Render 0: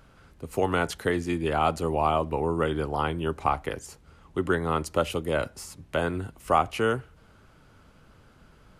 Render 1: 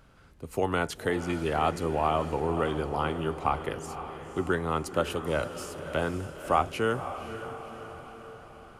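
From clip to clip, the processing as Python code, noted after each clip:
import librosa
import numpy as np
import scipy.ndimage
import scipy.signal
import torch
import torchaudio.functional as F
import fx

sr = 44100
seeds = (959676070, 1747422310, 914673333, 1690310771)

y = fx.echo_diffused(x, sr, ms=530, feedback_pct=57, wet_db=-10.5)
y = F.gain(torch.from_numpy(y), -2.5).numpy()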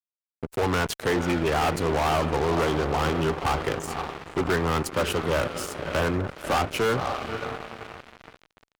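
y = fx.spec_gate(x, sr, threshold_db=-30, keep='strong')
y = fx.fuzz(y, sr, gain_db=31.0, gate_db=-40.0)
y = F.gain(torch.from_numpy(y), -6.5).numpy()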